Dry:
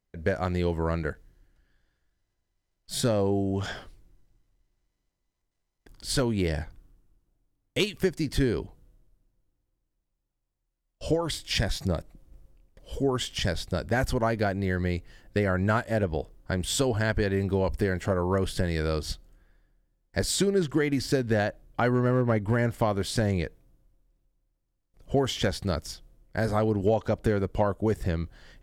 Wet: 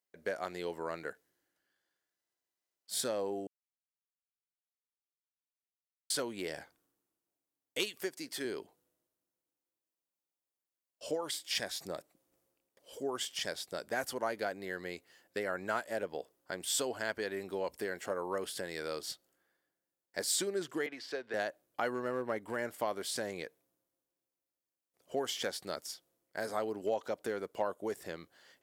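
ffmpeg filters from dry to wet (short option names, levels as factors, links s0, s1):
-filter_complex "[0:a]asettb=1/sr,asplit=3[s0][s1][s2];[s0]atrim=end=8.034[s3];[s1]atrim=start=8.03:end=8.45,asetpts=PTS-STARTPTS,afade=t=in:d=0.004:c=qsin,afade=t=out:st=0.416:d=0.004:c=qsin,highpass=f=260:p=1[s4];[s2]atrim=start=8.446[s5];[s3][s4]acrossfade=d=0.004:c1=hsin:c2=qsin[s6];[s6][s5]acrossfade=d=0.004:c1=qsin:c2=hsin,asettb=1/sr,asplit=3[s7][s8][s9];[s7]atrim=end=20.864[s10];[s8]atrim=start=20.86:end=21.34,asetpts=PTS-STARTPTS,afade=t=in:d=0.004:c=qsin,afade=t=out:st=0.476:d=0.004:c=qsin,acrossover=split=400 4500:gain=0.224 1 0.0794[s11][s12][s13];[s11][s12][s13]amix=inputs=3:normalize=0[s14];[s9]atrim=start=21.336[s15];[s10][s14]acrossfade=d=0.004:c1=hsin:c2=qsin[s16];[s16][s15]acrossfade=d=0.004:c1=qsin:c2=hsin,asplit=3[s17][s18][s19];[s17]atrim=end=3.47,asetpts=PTS-STARTPTS,afade=t=out:st=3.466:d=0.004:c=hsin[s20];[s18]atrim=start=3.47:end=6.1,asetpts=PTS-STARTPTS,volume=0[s21];[s19]atrim=start=6.1,asetpts=PTS-STARTPTS,afade=t=in:d=0.004:c=hsin[s22];[s20][s21][s22]concat=n=3:v=0:a=1,highpass=380,highshelf=f=7500:g=9.5,volume=0.422"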